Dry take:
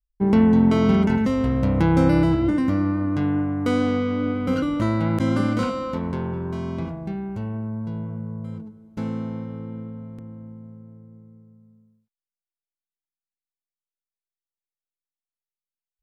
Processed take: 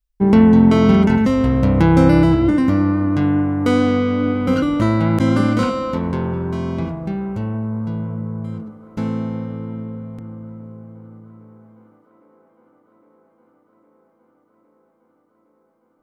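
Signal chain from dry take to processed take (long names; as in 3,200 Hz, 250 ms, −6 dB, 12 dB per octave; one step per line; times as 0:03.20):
delay with a band-pass on its return 810 ms, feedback 80%, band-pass 700 Hz, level −24 dB
level +5.5 dB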